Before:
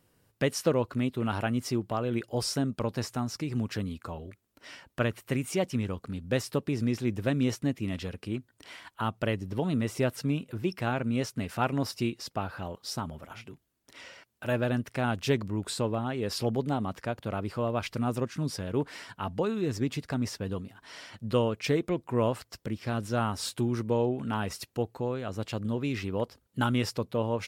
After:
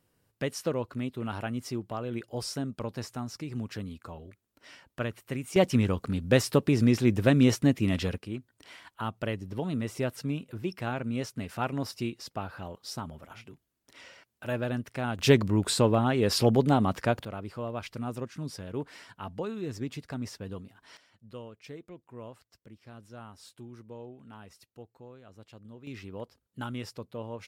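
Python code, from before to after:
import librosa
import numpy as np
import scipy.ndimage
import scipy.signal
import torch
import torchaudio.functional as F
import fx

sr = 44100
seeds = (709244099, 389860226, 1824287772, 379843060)

y = fx.gain(x, sr, db=fx.steps((0.0, -4.5), (5.56, 6.0), (8.18, -3.0), (15.19, 6.5), (17.25, -5.5), (20.97, -17.5), (25.87, -9.5)))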